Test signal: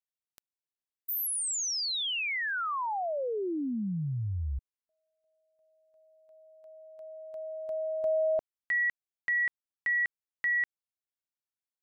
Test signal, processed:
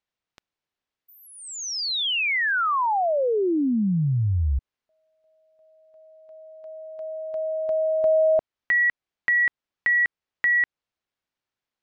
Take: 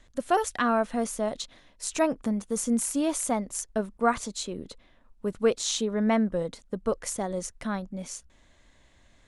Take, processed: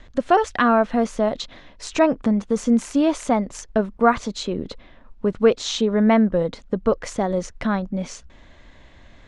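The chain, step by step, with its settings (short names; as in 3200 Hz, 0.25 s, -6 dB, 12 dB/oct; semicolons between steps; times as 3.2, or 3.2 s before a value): in parallel at 0 dB: compressor, threshold -36 dBFS; on the sum: air absorption 150 m; gain +6.5 dB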